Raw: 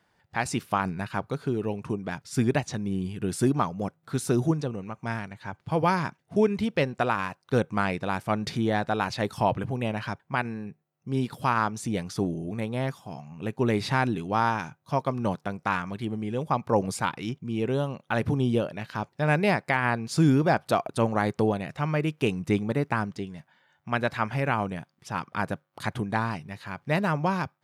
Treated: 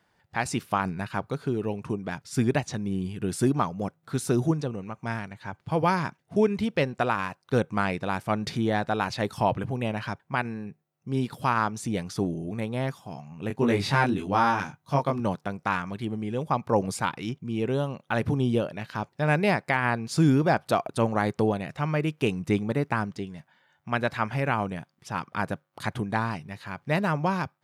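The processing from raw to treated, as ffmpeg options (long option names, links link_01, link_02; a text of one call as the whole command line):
ffmpeg -i in.wav -filter_complex "[0:a]asettb=1/sr,asplit=3[link_01][link_02][link_03];[link_01]atrim=end=13.484[link_04];[link_02]atrim=start=13.48:end=15.2,asetpts=PTS-STARTPTS,afade=type=in:duration=0.004:curve=qsin,afade=type=out:start_time=1.716:duration=0.004:curve=qsin,asplit=2[link_05][link_06];[link_06]adelay=21,volume=-2dB[link_07];[link_05][link_07]amix=inputs=2:normalize=0,atrim=end_sample=75852[link_08];[link_03]atrim=start=15.196[link_09];[link_04][link_08]acrossfade=duration=0.004:curve1=hsin:curve2=qsin[link_10];[link_10][link_09]acrossfade=duration=0.004:curve1=qsin:curve2=hsin" out.wav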